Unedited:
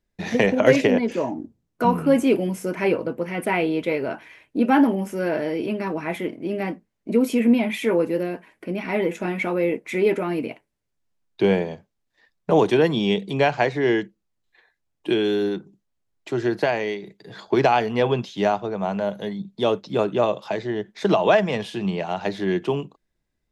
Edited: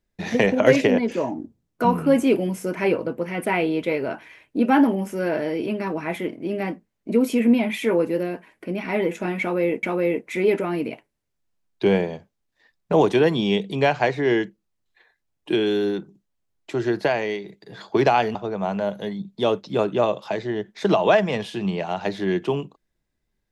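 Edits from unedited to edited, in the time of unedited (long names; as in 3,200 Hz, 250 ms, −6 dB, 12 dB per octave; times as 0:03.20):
0:09.41–0:09.83: repeat, 2 plays
0:17.93–0:18.55: remove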